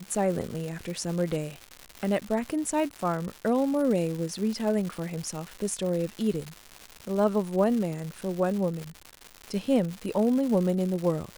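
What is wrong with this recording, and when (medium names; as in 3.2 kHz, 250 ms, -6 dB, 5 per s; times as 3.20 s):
crackle 280 per s -32 dBFS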